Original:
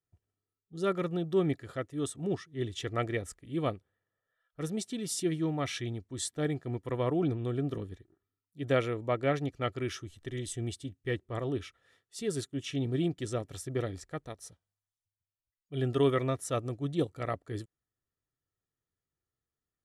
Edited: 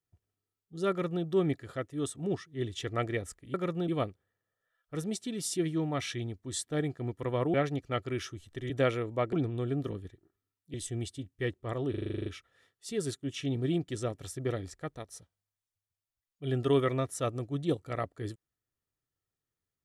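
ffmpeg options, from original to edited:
-filter_complex "[0:a]asplit=16[a][b][c][d][e][f][g][h][i][j][k][l][m][n][o][p];[a]atrim=end=3.542[q];[b]atrim=start=0.898:end=1.242[r];[c]atrim=start=3.538:end=7.202[s];[d]atrim=start=9.238:end=10.402[t];[e]atrim=start=8.608:end=9.242[u];[f]atrim=start=7.198:end=8.612[v];[g]atrim=start=10.398:end=11.602[w];[h]atrim=start=11.558:end=11.602[x];[i]atrim=start=11.558:end=11.602[y];[j]atrim=start=11.558:end=11.602[z];[k]atrim=start=11.558:end=11.602[aa];[l]atrim=start=11.558:end=11.602[ab];[m]atrim=start=11.558:end=11.602[ac];[n]atrim=start=11.558:end=11.602[ad];[o]atrim=start=11.558:end=11.602[ae];[p]atrim=start=11.558[af];[q][r]acrossfade=d=0.004:c1=hsin:c2=hsin[ag];[ag][s]acrossfade=d=0.004:c1=hsin:c2=hsin[ah];[ah][t]acrossfade=d=0.004:c1=hsin:c2=hsin[ai];[ai][u]acrossfade=d=0.004:c1=hsin:c2=hsin[aj];[aj][v]acrossfade=d=0.004:c1=hsin:c2=hsin[ak];[ak][w]acrossfade=d=0.004:c1=hsin:c2=hsin[al];[al][x]acrossfade=d=0.004:c1=hsin:c2=hsin[am];[am][y]acrossfade=d=0.004:c1=hsin:c2=hsin[an];[an][z]acrossfade=d=0.004:c1=hsin:c2=hsin[ao];[ao][aa]acrossfade=d=0.004:c1=hsin:c2=hsin[ap];[ap][ab]acrossfade=d=0.004:c1=hsin:c2=hsin[aq];[aq][ac]acrossfade=d=0.004:c1=hsin:c2=hsin[ar];[ar][ad]acrossfade=d=0.004:c1=hsin:c2=hsin[as];[as][ae]acrossfade=d=0.004:c1=hsin:c2=hsin[at];[at][af]acrossfade=d=0.004:c1=hsin:c2=hsin"

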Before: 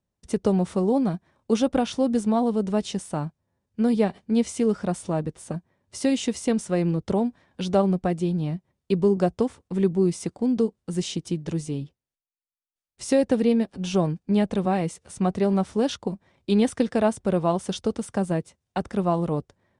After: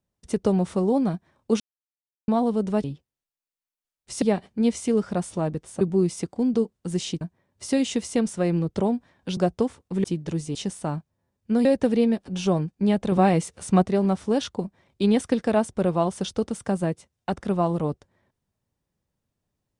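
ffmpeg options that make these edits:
-filter_complex "[0:a]asplit=13[a][b][c][d][e][f][g][h][i][j][k][l][m];[a]atrim=end=1.6,asetpts=PTS-STARTPTS,afade=t=out:st=1.596:d=0.004:c=hsin[n];[b]atrim=start=1.6:end=2.28,asetpts=PTS-STARTPTS,volume=0[o];[c]atrim=start=2.28:end=2.842,asetpts=PTS-STARTPTS,afade=t=in:d=0.004:c=hsin[p];[d]atrim=start=11.748:end=13.132[q];[e]atrim=start=3.938:end=5.532[r];[f]atrim=start=9.838:end=11.242[s];[g]atrim=start=5.528:end=7.692[t];[h]atrim=start=9.168:end=9.842[u];[i]atrim=start=11.238:end=11.752[v];[j]atrim=start=2.838:end=3.942[w];[k]atrim=start=13.128:end=14.602[x];[l]atrim=start=14.598:end=15.302,asetpts=PTS-STARTPTS,volume=5dB[y];[m]atrim=start=15.298[z];[n][o][p]concat=n=3:v=0:a=1[aa];[aa][q]acrossfade=d=0.004:c1=hsin:c2=hsin[ab];[ab][r]acrossfade=d=0.004:c1=hsin:c2=hsin[ac];[ac][s]acrossfade=d=0.004:c1=hsin:c2=hsin[ad];[ad][t]acrossfade=d=0.004:c1=hsin:c2=hsin[ae];[ae][u]acrossfade=d=0.004:c1=hsin:c2=hsin[af];[af][v]acrossfade=d=0.004:c1=hsin:c2=hsin[ag];[ag][w]acrossfade=d=0.004:c1=hsin:c2=hsin[ah];[ah][x]acrossfade=d=0.004:c1=hsin:c2=hsin[ai];[ai][y]acrossfade=d=0.004:c1=hsin:c2=hsin[aj];[aj][z]acrossfade=d=0.004:c1=hsin:c2=hsin"

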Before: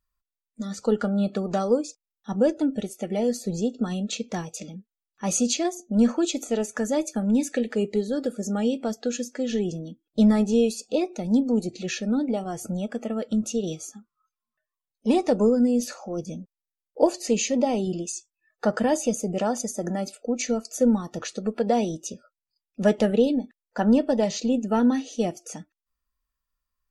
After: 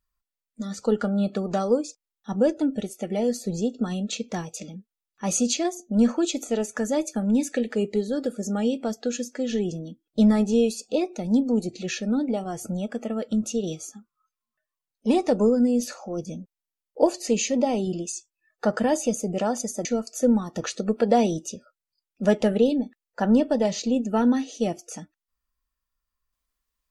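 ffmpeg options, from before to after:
-filter_complex "[0:a]asplit=4[a][b][c][d];[a]atrim=end=19.852[e];[b]atrim=start=20.428:end=21.142[f];[c]atrim=start=21.138:end=22.042,asetpts=PTS-STARTPTS,volume=3dB[g];[d]atrim=start=22.038[h];[e][f]acrossfade=d=0.004:c1=hsin:c2=hsin[i];[i][g]acrossfade=d=0.004:c1=hsin:c2=hsin[j];[j][h]acrossfade=d=0.004:c1=hsin:c2=hsin"

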